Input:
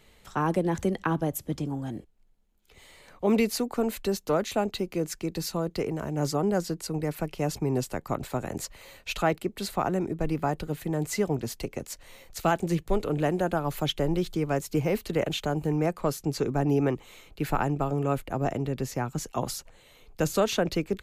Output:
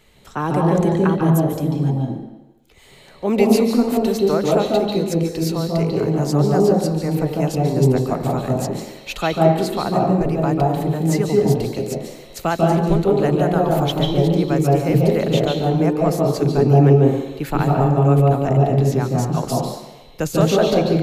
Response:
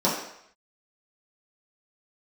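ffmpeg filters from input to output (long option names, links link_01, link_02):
-filter_complex "[0:a]asplit=2[link_01][link_02];[1:a]atrim=start_sample=2205,asetrate=31752,aresample=44100,adelay=142[link_03];[link_02][link_03]afir=irnorm=-1:irlink=0,volume=-15.5dB[link_04];[link_01][link_04]amix=inputs=2:normalize=0,volume=3.5dB"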